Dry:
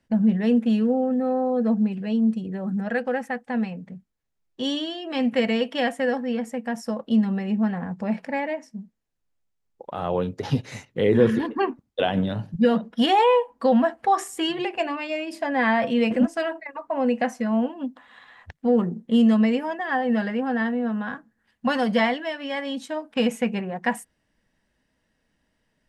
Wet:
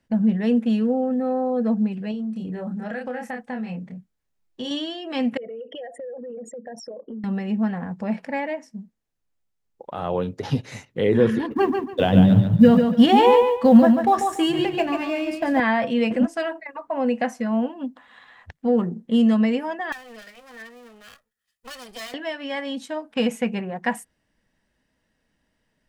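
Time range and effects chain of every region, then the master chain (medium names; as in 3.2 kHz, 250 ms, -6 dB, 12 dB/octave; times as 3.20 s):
2.11–4.71 s: doubling 28 ms -3.5 dB + compression, threshold -26 dBFS
5.37–7.24 s: resonances exaggerated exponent 3 + compression, threshold -33 dBFS
11.51–15.60 s: companding laws mixed up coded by A + peaking EQ 110 Hz +14.5 dB 2.6 oct + feedback delay 142 ms, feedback 26%, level -5.5 dB
19.92–22.14 s: comb filter that takes the minimum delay 1.6 ms + pre-emphasis filter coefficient 0.9
whole clip: none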